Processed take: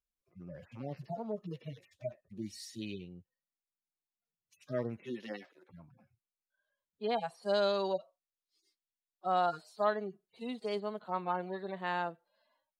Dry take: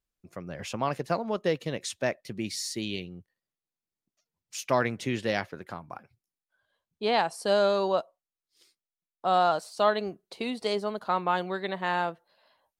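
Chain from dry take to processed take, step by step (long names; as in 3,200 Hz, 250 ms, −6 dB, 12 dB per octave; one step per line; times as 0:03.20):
harmonic-percussive split with one part muted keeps harmonic
0:04.96–0:05.68: high-pass filter 160 Hz → 320 Hz 24 dB per octave
0:07.53–0:09.32: parametric band 4,200 Hz +6 dB 1.1 octaves
level −6.5 dB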